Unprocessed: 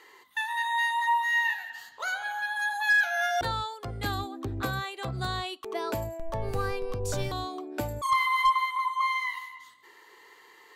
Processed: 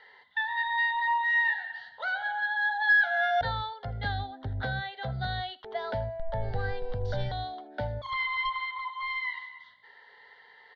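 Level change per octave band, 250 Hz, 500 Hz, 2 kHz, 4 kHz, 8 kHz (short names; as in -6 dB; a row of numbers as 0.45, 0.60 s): -7.0 dB, -0.5 dB, +1.0 dB, -2.5 dB, under -25 dB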